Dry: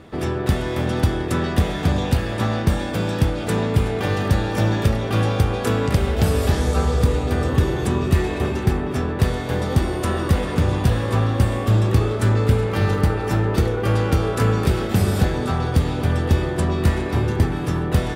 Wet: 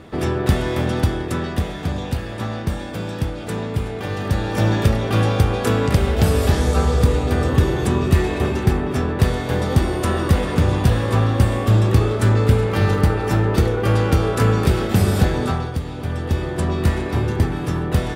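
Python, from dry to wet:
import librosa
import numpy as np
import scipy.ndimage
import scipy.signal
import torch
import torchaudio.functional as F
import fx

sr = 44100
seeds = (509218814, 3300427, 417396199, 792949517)

y = fx.gain(x, sr, db=fx.line((0.69, 2.5), (1.77, -4.5), (4.08, -4.5), (4.69, 2.0), (15.48, 2.0), (15.8, -7.5), (16.69, 0.0)))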